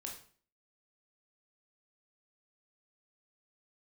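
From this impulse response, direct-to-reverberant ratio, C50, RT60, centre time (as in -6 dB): -0.5 dB, 6.5 dB, 0.45 s, 26 ms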